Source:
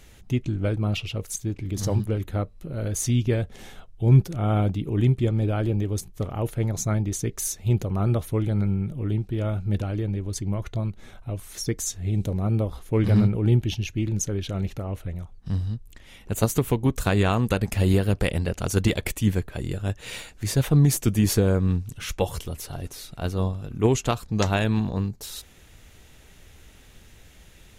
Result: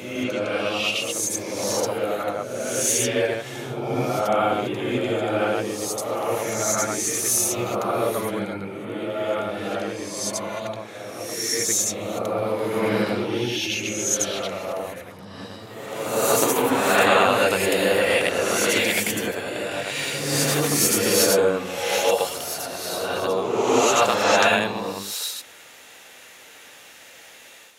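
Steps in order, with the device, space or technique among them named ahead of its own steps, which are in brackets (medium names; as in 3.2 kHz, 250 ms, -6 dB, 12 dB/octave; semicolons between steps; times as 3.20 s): ghost voice (reverse; reverberation RT60 1.6 s, pre-delay 70 ms, DRR -7.5 dB; reverse; high-pass 560 Hz 12 dB/octave); trim +3.5 dB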